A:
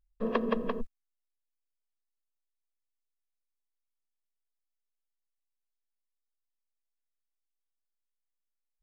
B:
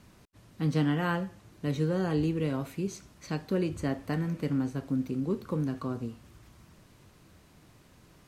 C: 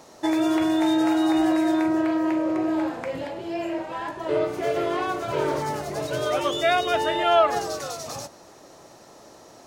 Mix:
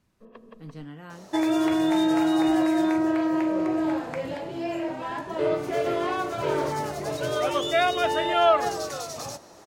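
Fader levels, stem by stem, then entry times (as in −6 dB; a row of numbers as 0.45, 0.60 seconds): −19.0, −14.0, −1.0 decibels; 0.00, 0.00, 1.10 seconds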